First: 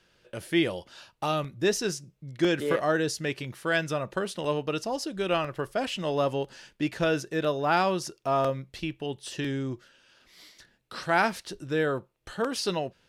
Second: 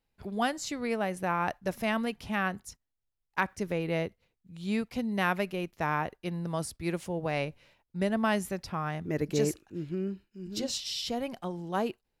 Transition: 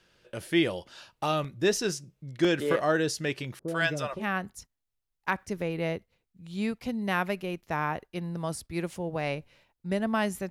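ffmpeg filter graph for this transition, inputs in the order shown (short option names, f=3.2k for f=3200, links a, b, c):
-filter_complex "[0:a]asettb=1/sr,asplit=3[a][b][c];[a]atrim=end=3.594[d];[b]atrim=start=3.59:end=4.27,asetpts=PTS-STARTPTS,afade=t=in:d=0.004:c=qsin,afade=t=out:st=0.676:d=0.004:c=qsin,acrossover=split=550[e][f];[f]adelay=90[g];[e][g]amix=inputs=2:normalize=0,atrim=end_sample=29988[h];[c]atrim=start=4.266[i];[d][h]acrossfade=d=0.004:c1=hsin:c2=qsin[j];[j][i]acrossfade=d=0.004:c1=qsin:c2=hsin,apad=whole_dur=10.5,atrim=end=10.5,atrim=end=4.27,asetpts=PTS-STARTPTS[k];[1:a]atrim=start=2.21:end=8.6,asetpts=PTS-STARTPTS[l];[k][l]acrossfade=d=0.16:c1=tri:c2=tri"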